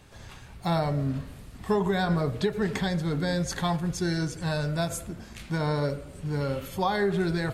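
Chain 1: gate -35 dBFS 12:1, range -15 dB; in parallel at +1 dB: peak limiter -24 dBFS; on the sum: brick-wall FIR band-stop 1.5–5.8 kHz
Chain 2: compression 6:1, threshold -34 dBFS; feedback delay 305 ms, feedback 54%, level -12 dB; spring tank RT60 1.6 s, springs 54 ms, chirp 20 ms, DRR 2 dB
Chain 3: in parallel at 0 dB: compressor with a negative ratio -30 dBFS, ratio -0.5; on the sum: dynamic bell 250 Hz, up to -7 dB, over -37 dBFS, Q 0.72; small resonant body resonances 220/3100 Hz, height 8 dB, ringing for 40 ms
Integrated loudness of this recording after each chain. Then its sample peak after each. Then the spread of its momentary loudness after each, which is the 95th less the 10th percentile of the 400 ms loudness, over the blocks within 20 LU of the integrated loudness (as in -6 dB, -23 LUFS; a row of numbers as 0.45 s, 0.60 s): -24.5 LUFS, -35.5 LUFS, -26.5 LUFS; -11.0 dBFS, -22.0 dBFS, -9.0 dBFS; 8 LU, 5 LU, 7 LU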